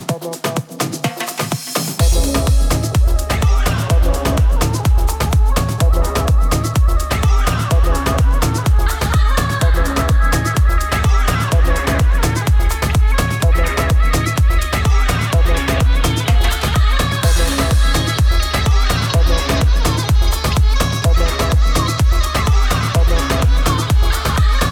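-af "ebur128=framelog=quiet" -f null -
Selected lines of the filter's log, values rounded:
Integrated loudness:
  I:         -15.8 LUFS
  Threshold: -25.8 LUFS
Loudness range:
  LRA:         0.6 LU
  Threshold: -35.7 LUFS
  LRA low:   -16.0 LUFS
  LRA high:  -15.3 LUFS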